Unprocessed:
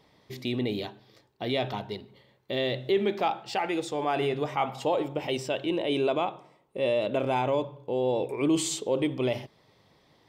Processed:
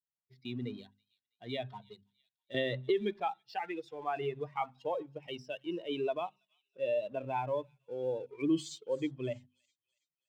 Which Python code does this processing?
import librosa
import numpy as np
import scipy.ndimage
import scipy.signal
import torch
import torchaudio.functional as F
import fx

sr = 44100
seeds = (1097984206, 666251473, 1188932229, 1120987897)

p1 = fx.bin_expand(x, sr, power=2.0)
p2 = scipy.signal.sosfilt(scipy.signal.butter(4, 110.0, 'highpass', fs=sr, output='sos'), p1)
p3 = fx.air_absorb(p2, sr, metres=120.0)
p4 = np.sign(p3) * np.maximum(np.abs(p3) - 10.0 ** (-52.0 / 20.0), 0.0)
p5 = p3 + F.gain(torch.from_numpy(p4), -5.5).numpy()
p6 = fx.hum_notches(p5, sr, base_hz=50, count=5)
p7 = p6 + fx.echo_wet_highpass(p6, sr, ms=326, feedback_pct=43, hz=4300.0, wet_db=-18.5, dry=0)
p8 = fx.band_squash(p7, sr, depth_pct=100, at=(2.54, 3.2))
y = F.gain(torch.from_numpy(p8), -6.5).numpy()